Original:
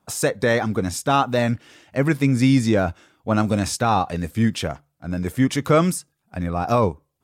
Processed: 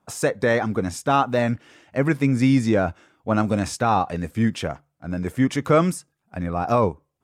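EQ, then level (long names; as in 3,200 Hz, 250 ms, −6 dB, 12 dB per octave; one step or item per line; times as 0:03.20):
low-shelf EQ 140 Hz −4 dB
parametric band 4,000 Hz −4.5 dB 0.99 octaves
high-shelf EQ 9,700 Hz −11.5 dB
0.0 dB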